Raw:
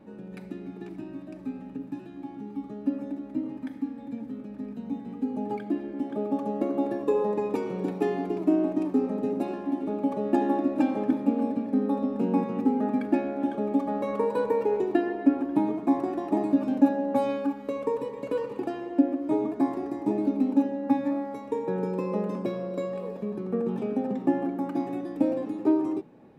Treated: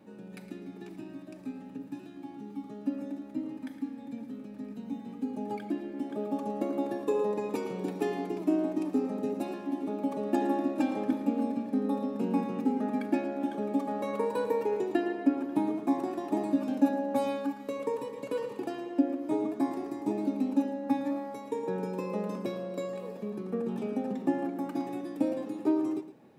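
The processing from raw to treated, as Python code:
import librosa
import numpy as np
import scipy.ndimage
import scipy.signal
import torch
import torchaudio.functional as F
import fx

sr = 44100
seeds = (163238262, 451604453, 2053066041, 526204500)

y = scipy.signal.sosfilt(scipy.signal.butter(2, 86.0, 'highpass', fs=sr, output='sos'), x)
y = fx.high_shelf(y, sr, hz=3200.0, db=10.5)
y = y + 10.0 ** (-13.0 / 20.0) * np.pad(y, (int(112 * sr / 1000.0), 0))[:len(y)]
y = y * 10.0 ** (-4.5 / 20.0)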